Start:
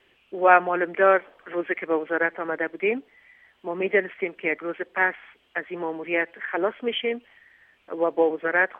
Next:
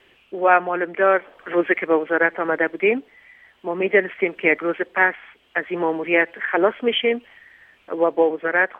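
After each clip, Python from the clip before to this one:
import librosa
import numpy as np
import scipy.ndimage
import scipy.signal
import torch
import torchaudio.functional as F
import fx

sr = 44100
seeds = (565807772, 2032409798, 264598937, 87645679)

y = fx.rider(x, sr, range_db=5, speed_s=0.5)
y = y * librosa.db_to_amplitude(4.5)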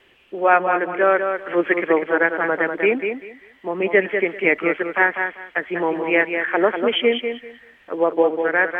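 y = fx.echo_feedback(x, sr, ms=195, feedback_pct=20, wet_db=-6.5)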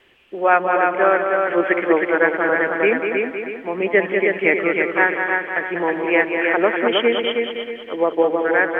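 y = fx.echo_feedback(x, sr, ms=316, feedback_pct=36, wet_db=-4.0)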